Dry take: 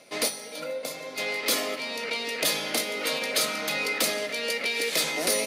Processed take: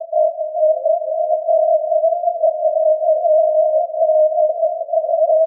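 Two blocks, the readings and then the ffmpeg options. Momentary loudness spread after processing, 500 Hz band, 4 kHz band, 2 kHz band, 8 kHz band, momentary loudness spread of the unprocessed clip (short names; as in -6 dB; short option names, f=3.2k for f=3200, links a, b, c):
4 LU, +19.5 dB, under -40 dB, under -40 dB, under -40 dB, 9 LU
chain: -filter_complex "[0:a]aecho=1:1:5.8:0.82,asplit=2[a][b];[b]asoftclip=type=hard:threshold=-21.5dB,volume=-11dB[c];[a][c]amix=inputs=2:normalize=0,aphaser=in_gain=1:out_gain=1:delay=5:decay=0.61:speed=0.75:type=triangular,asuperpass=centerf=640:order=8:qfactor=6.9,alimiter=level_in=34dB:limit=-1dB:release=50:level=0:latency=1,volume=-6.5dB"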